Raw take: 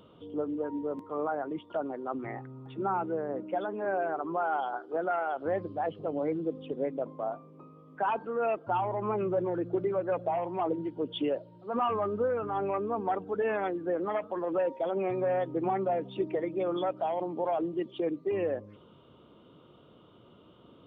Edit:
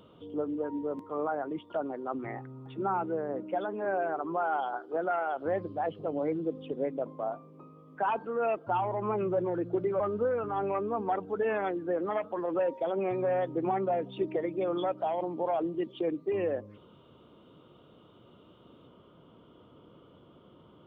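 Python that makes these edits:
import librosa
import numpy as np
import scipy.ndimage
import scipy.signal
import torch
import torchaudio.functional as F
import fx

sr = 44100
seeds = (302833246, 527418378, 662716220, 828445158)

y = fx.edit(x, sr, fx.cut(start_s=10.0, length_s=1.99), tone=tone)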